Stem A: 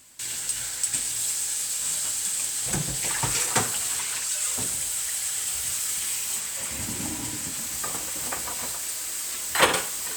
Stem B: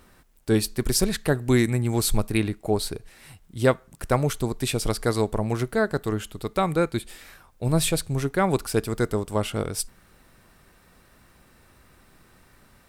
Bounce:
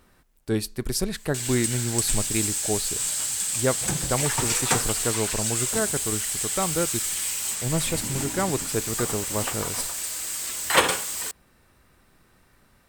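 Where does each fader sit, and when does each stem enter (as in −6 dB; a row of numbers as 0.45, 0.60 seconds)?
+0.5, −4.0 decibels; 1.15, 0.00 seconds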